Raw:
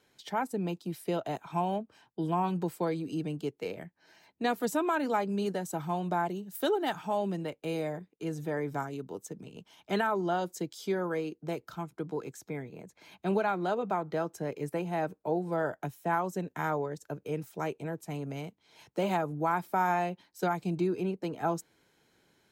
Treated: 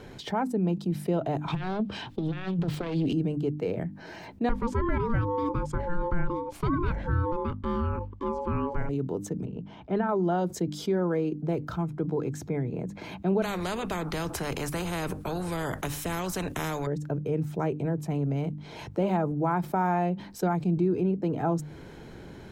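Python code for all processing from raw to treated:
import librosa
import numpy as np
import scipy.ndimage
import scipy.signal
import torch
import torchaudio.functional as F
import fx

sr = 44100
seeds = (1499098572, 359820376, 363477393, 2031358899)

y = fx.chain(x, sr, fx.self_delay(depth_ms=0.52),
    fx.peak_eq(hz=3500.0, db=13.0, octaves=1.3),
    fx.over_compress(threshold_db=-36.0, ratio=-0.5), at=(1.48, 3.13))
y = fx.chain(y, sr, fx.lowpass(hz=8700.0, slope=12),
    fx.ring_mod(carrier_hz=700.0),
    fx.high_shelf(hz=6100.0, db=-10.0), at=(4.49, 8.89))
y = fx.chain(y, sr, fx.spacing_loss(db_at_10k=24),
    fx.upward_expand(threshold_db=-41.0, expansion=1.5), at=(9.45, 10.09))
y = fx.chain(y, sr, fx.peak_eq(hz=10000.0, db=9.0, octaves=0.74),
    fx.spectral_comp(ratio=4.0), at=(13.42, 16.87))
y = fx.tilt_eq(y, sr, slope=-3.5)
y = fx.hum_notches(y, sr, base_hz=50, count=6)
y = fx.env_flatten(y, sr, amount_pct=50)
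y = y * 10.0 ** (-4.0 / 20.0)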